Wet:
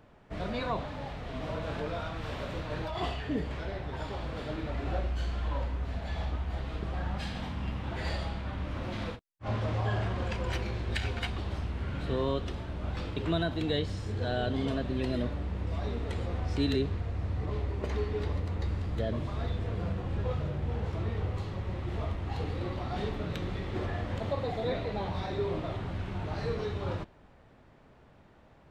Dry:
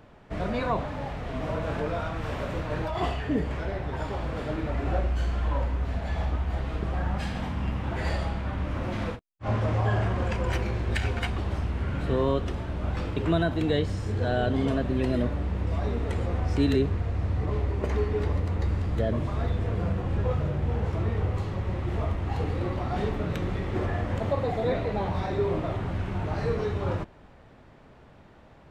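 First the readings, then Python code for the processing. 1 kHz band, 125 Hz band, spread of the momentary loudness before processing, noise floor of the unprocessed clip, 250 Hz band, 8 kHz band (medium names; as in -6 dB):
-5.5 dB, -5.5 dB, 6 LU, -52 dBFS, -5.5 dB, no reading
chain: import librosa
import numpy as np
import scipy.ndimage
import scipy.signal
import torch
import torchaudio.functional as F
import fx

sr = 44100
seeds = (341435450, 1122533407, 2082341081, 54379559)

y = fx.dynamic_eq(x, sr, hz=3900.0, q=1.4, threshold_db=-55.0, ratio=4.0, max_db=7)
y = F.gain(torch.from_numpy(y), -5.5).numpy()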